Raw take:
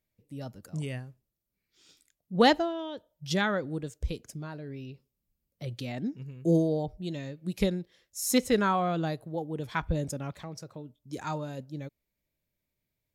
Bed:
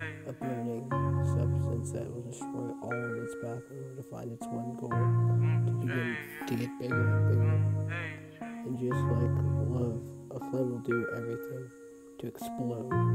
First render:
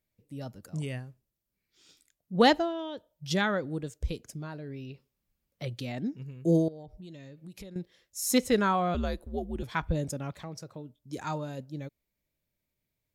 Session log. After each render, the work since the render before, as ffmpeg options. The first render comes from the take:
-filter_complex "[0:a]asettb=1/sr,asplit=3[a][b][c];[a]atrim=end=4.904[d];[b]atrim=start=4.9:end=5.68,asetpts=PTS-STARTPTS,afade=t=in:d=0.004:c=qsin,afade=t=out:st=0.776:d=0.004:c=qsin,equalizer=f=1.6k:w=0.37:g=7[e];[c]atrim=start=5.676[f];[d][e]acrossfade=d=0.004:c1=hsin:c2=qsin[g];[g][f]acrossfade=d=0.004:c1=qsin:c2=hsin,asettb=1/sr,asplit=3[h][i][j];[h]atrim=end=6.684[k];[i]atrim=start=6.68:end=7.76,asetpts=PTS-STARTPTS,afade=t=in:d=0.004:c=qsin,afade=t=out:st=1.076:d=0.004:c=qsin,acompressor=threshold=-43dB:ratio=6:attack=3.2:release=140:knee=1:detection=peak[l];[j]atrim=start=7.756[m];[k][l]acrossfade=d=0.004:c1=hsin:c2=qsin[n];[n][m]acrossfade=d=0.004:c1=qsin:c2=hsin,asettb=1/sr,asplit=3[o][p][q];[o]atrim=end=8.944[r];[p]atrim=start=8.94:end=9.63,asetpts=PTS-STARTPTS,afade=t=in:d=0.004:c=qsin,afade=t=out:st=0.686:d=0.004:c=qsin,afreqshift=-97[s];[q]atrim=start=9.626[t];[r][s]acrossfade=d=0.004:c1=hsin:c2=qsin[u];[u][t]acrossfade=d=0.004:c1=qsin:c2=hsin"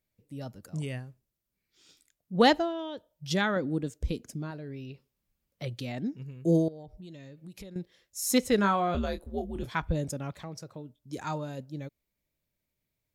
-filter_complex "[0:a]asettb=1/sr,asplit=3[a][b][c];[a]atrim=end=3.564[d];[b]atrim=start=3.56:end=4.51,asetpts=PTS-STARTPTS,afade=t=in:d=0.004:c=qsin,afade=t=out:st=0.946:d=0.004:c=qsin,equalizer=f=250:w=1.5:g=8[e];[c]atrim=start=4.506[f];[d][e]acrossfade=d=0.004:c1=hsin:c2=qsin[g];[g][f]acrossfade=d=0.004:c1=qsin:c2=hsin,asettb=1/sr,asplit=3[h][i][j];[h]atrim=end=8.564[k];[i]atrim=start=8.56:end=9.7,asetpts=PTS-STARTPTS,afade=t=in:d=0.004:c=qsin,afade=t=out:st=1.136:d=0.004:c=qsin,asplit=2[l][m];[m]adelay=25,volume=-8dB[n];[l][n]amix=inputs=2:normalize=0,atrim=end_sample=50274[o];[j]atrim=start=9.696[p];[k][o]acrossfade=d=0.004:c1=hsin:c2=qsin[q];[q][p]acrossfade=d=0.004:c1=qsin:c2=hsin"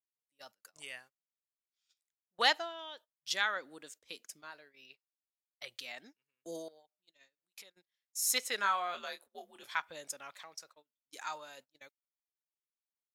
-af "highpass=1.2k,agate=range=-24dB:threshold=-56dB:ratio=16:detection=peak"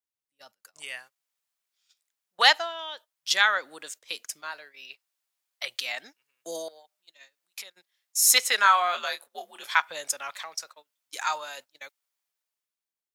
-filter_complex "[0:a]acrossover=split=550[a][b];[a]alimiter=level_in=17dB:limit=-24dB:level=0:latency=1:release=379,volume=-17dB[c];[b]dynaudnorm=f=170:g=11:m=13dB[d];[c][d]amix=inputs=2:normalize=0"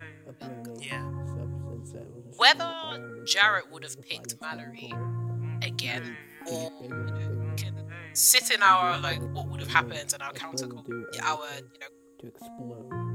-filter_complex "[1:a]volume=-6dB[a];[0:a][a]amix=inputs=2:normalize=0"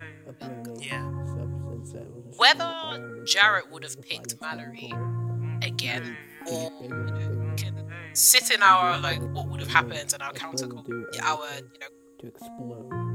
-af "volume=2.5dB,alimiter=limit=-2dB:level=0:latency=1"

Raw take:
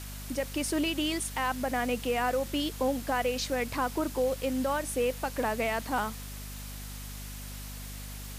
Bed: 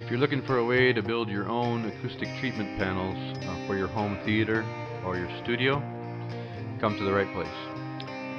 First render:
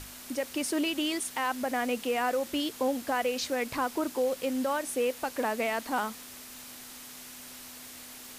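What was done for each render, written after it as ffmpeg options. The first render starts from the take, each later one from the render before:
-af "bandreject=f=50:t=h:w=6,bandreject=f=100:t=h:w=6,bandreject=f=150:t=h:w=6,bandreject=f=200:t=h:w=6"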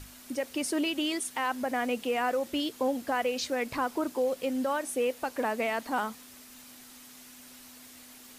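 -af "afftdn=nr=6:nf=-46"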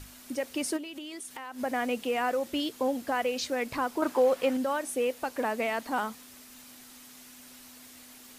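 -filter_complex "[0:a]asplit=3[a][b][c];[a]afade=t=out:st=0.76:d=0.02[d];[b]acompressor=threshold=-37dB:ratio=8:attack=3.2:release=140:knee=1:detection=peak,afade=t=in:st=0.76:d=0.02,afade=t=out:st=1.58:d=0.02[e];[c]afade=t=in:st=1.58:d=0.02[f];[d][e][f]amix=inputs=3:normalize=0,asettb=1/sr,asplit=3[g][h][i];[g]atrim=end=4.024[j];[h]atrim=start=4.02:end=4.57,asetpts=PTS-STARTPTS,afade=t=in:d=0.004:c=qsin,afade=t=out:st=0.546:d=0.004:c=qsin,equalizer=f=1.2k:t=o:w=2.4:g=10.5[k];[i]atrim=start=4.566[l];[j][k]acrossfade=d=0.004:c1=hsin:c2=qsin[m];[m][l]acrossfade=d=0.004:c1=qsin:c2=hsin"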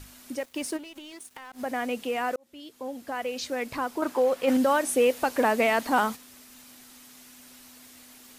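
-filter_complex "[0:a]asettb=1/sr,asplit=3[a][b][c];[a]atrim=end=0.394[d];[b]atrim=start=0.39:end=1.66,asetpts=PTS-STARTPTS,afade=t=in:d=0.004:c=qsin,afade=t=out:st=1.266:d=0.004:c=qsin,aeval=exprs='sgn(val(0))*max(abs(val(0))-0.00376,0)':c=same[e];[c]atrim=start=1.656[f];[d][e]acrossfade=d=0.004:c1=hsin:c2=qsin[g];[g][f]acrossfade=d=0.004:c1=qsin:c2=hsin,asplit=3[h][i][j];[h]afade=t=out:st=4.47:d=0.02[k];[i]acontrast=86,afade=t=in:st=4.47:d=0.02,afade=t=out:st=6.15:d=0.02[l];[j]afade=t=in:st=6.15:d=0.02[m];[k][l][m]amix=inputs=3:normalize=0,asplit=2[n][o];[n]atrim=end=2.36,asetpts=PTS-STARTPTS,afade=t=out:st=2.356:d=0.004:c=hsin[p];[o]atrim=start=2.36,asetpts=PTS-STARTPTS,afade=t=in:d=1.19[q];[p][q]concat=n=2:v=0:a=1"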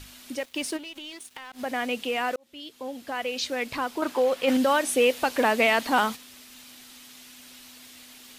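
-af "equalizer=f=3.3k:t=o:w=1.4:g=7.5"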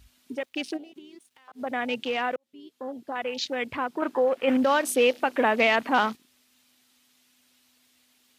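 -af "highpass=f=54:w=0.5412,highpass=f=54:w=1.3066,afwtdn=0.0158"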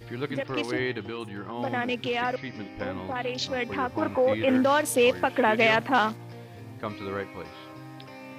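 -filter_complex "[1:a]volume=-7dB[a];[0:a][a]amix=inputs=2:normalize=0"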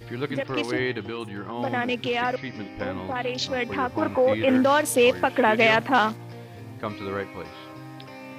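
-af "volume=2.5dB"

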